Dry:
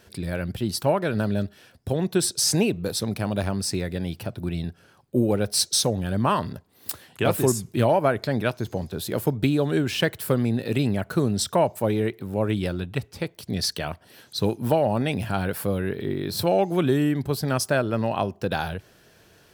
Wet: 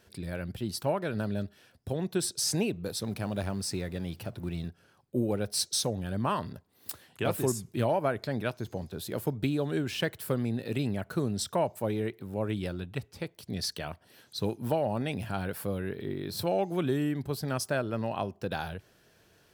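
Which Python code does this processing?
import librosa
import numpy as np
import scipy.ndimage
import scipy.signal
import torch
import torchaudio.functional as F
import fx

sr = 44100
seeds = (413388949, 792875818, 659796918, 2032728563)

y = fx.law_mismatch(x, sr, coded='mu', at=(3.04, 4.68))
y = y * librosa.db_to_amplitude(-7.5)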